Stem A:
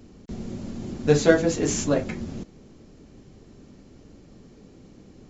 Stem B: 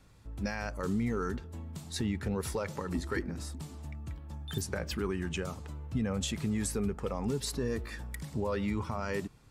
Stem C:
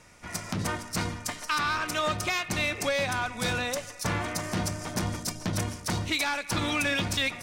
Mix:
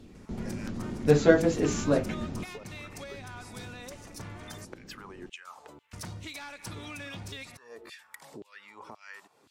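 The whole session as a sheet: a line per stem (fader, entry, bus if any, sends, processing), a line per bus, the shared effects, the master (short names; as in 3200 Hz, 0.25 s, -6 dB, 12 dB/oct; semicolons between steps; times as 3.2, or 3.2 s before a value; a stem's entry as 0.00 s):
-2.0 dB, 0.00 s, no bus, no send, high shelf 4500 Hz -10 dB
-1.0 dB, 0.00 s, bus A, no send, bell 880 Hz +3.5 dB; compressor 6:1, threshold -38 dBFS, peak gain reduction 10.5 dB; LFO high-pass saw down 1.9 Hz 300–3500 Hz
-1.5 dB, 0.15 s, muted 4.65–5.93, bus A, no send, auto duck -8 dB, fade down 0.25 s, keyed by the first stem
bus A: 0.0 dB, bell 100 Hz +6.5 dB 1.7 oct; compressor 5:1, threshold -40 dBFS, peak gain reduction 15 dB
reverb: off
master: dry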